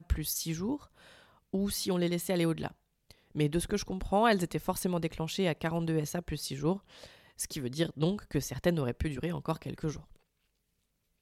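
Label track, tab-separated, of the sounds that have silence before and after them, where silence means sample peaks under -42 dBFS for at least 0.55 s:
1.530000	10.000000	sound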